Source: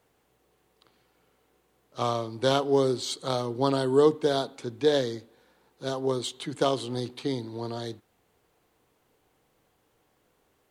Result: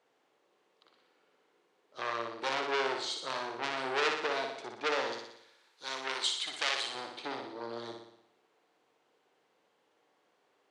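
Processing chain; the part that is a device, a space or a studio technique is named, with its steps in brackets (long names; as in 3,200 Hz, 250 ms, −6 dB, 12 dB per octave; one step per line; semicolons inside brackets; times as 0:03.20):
public-address speaker with an overloaded transformer (saturating transformer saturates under 3,800 Hz; band-pass filter 340–5,400 Hz)
0:05.12–0:06.95: tilt shelving filter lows −10 dB, about 1,300 Hz
flutter between parallel walls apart 10.3 metres, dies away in 0.73 s
level −3 dB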